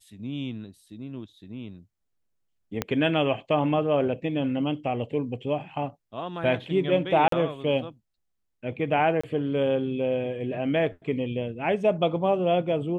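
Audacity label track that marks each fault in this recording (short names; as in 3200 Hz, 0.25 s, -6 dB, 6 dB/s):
2.820000	2.820000	pop -11 dBFS
7.280000	7.320000	gap 43 ms
9.210000	9.230000	gap 25 ms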